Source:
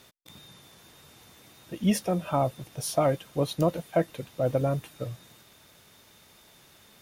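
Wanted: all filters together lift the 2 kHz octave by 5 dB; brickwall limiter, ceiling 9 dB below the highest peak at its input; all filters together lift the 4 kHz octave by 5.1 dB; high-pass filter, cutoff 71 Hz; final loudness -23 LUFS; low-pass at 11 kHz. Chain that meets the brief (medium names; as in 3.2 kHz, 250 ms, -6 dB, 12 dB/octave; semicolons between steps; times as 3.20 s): high-pass 71 Hz; low-pass 11 kHz; peaking EQ 2 kHz +5 dB; peaking EQ 4 kHz +5 dB; trim +9 dB; peak limiter -10.5 dBFS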